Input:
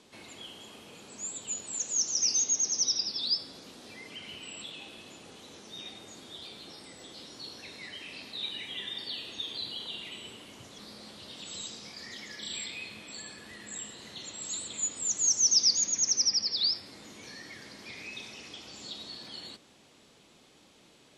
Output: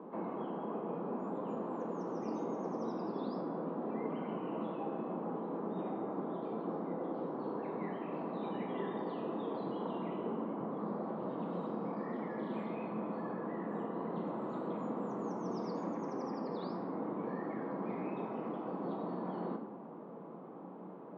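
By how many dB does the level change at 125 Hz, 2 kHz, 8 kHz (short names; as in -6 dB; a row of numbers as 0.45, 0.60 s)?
+10.0 dB, -9.0 dB, under -40 dB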